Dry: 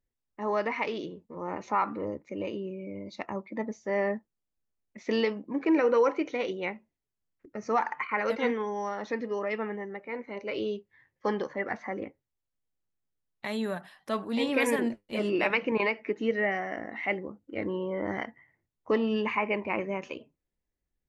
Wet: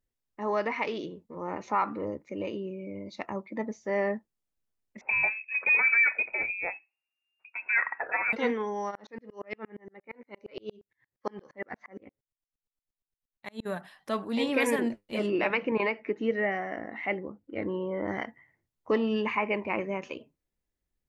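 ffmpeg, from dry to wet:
-filter_complex "[0:a]asettb=1/sr,asplit=3[s0][s1][s2];[s0]atrim=end=5.014[s3];[s1]atrim=start=5.01:end=8.33,asetpts=PTS-STARTPTS,afade=t=in:d=0.004:c=qsin,afade=t=out:st=3.316:d=0.004:c=qsin,lowpass=f=2400:t=q:w=0.5098,lowpass=f=2400:t=q:w=0.6013,lowpass=f=2400:t=q:w=0.9,lowpass=f=2400:t=q:w=2.563,afreqshift=-2800[s4];[s2]atrim=start=8.326[s5];[s3][s4]acrossfade=d=0.004:c1=hsin:c2=qsin[s6];[s6][s5]acrossfade=d=0.004:c1=qsin:c2=hsin,asplit=3[s7][s8][s9];[s7]afade=t=out:st=8.9:d=0.02[s10];[s8]aeval=exprs='val(0)*pow(10,-37*if(lt(mod(-8.6*n/s,1),2*abs(-8.6)/1000),1-mod(-8.6*n/s,1)/(2*abs(-8.6)/1000),(mod(-8.6*n/s,1)-2*abs(-8.6)/1000)/(1-2*abs(-8.6)/1000))/20)':c=same,afade=t=in:st=8.9:d=0.02,afade=t=out:st=13.65:d=0.02[s11];[s9]afade=t=in:st=13.65:d=0.02[s12];[s10][s11][s12]amix=inputs=3:normalize=0,asettb=1/sr,asplit=3[s13][s14][s15];[s13]atrim=end=15.264[s16];[s14]atrim=start=15.26:end=18.08,asetpts=PTS-STARTPTS,afade=t=in:d=0.004:c=qsin,afade=t=out:st=2.816:d=0.004:c=qsin,highshelf=f=4700:g=-10.5[s17];[s15]atrim=start=18.076[s18];[s16][s17]acrossfade=d=0.004:c1=hsin:c2=qsin[s19];[s19][s18]acrossfade=d=0.004:c1=qsin:c2=hsin"

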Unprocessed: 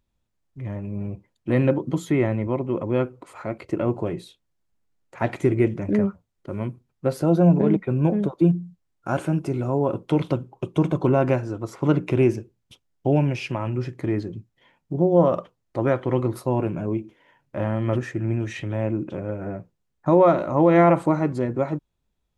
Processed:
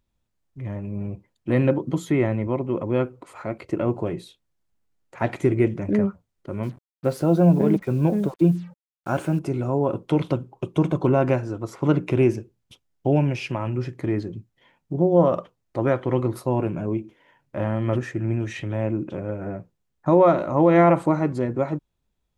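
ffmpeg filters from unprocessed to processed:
-filter_complex "[0:a]asettb=1/sr,asplit=3[s0][s1][s2];[s0]atrim=end=6.634[s3];[s1]atrim=start=6.63:end=9.39,asetpts=PTS-STARTPTS,afade=t=in:d=0.004:c=qsin,afade=t=out:st=2.756:d=0.004:c=qsin,acrusher=bits=7:mix=0:aa=0.5[s4];[s2]atrim=start=9.386[s5];[s3][s4]acrossfade=d=0.004:c1=hsin:c2=qsin[s6];[s6][s5]acrossfade=d=0.004:c1=qsin:c2=hsin"

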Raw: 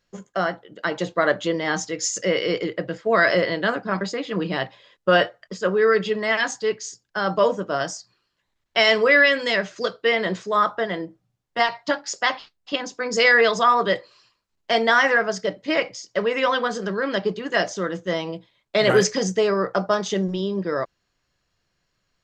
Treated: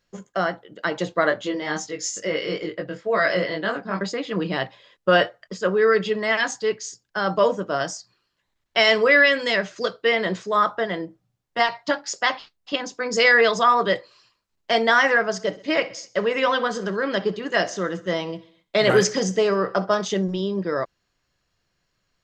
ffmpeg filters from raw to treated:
-filter_complex "[0:a]asplit=3[s0][s1][s2];[s0]afade=t=out:st=1.29:d=0.02[s3];[s1]flanger=delay=19:depth=2.7:speed=2.2,afade=t=in:st=1.29:d=0.02,afade=t=out:st=3.99:d=0.02[s4];[s2]afade=t=in:st=3.99:d=0.02[s5];[s3][s4][s5]amix=inputs=3:normalize=0,asettb=1/sr,asplit=3[s6][s7][s8];[s6]atrim=end=15.254[s9];[s7]atrim=start=15.25:end=20.05,asetpts=PTS-STARTPTS,afade=t=in:d=0.004:c=qsin,afade=t=out:st=4.796:d=0.004:c=qsin,aecho=1:1:64|128|192|256:0.112|0.0606|0.0327|0.0177,atrim=end_sample=211680[s10];[s8]atrim=start=20.046[s11];[s9][s10]acrossfade=d=0.004:c1=hsin:c2=qsin[s12];[s12][s11]acrossfade=d=0.004:c1=qsin:c2=hsin"

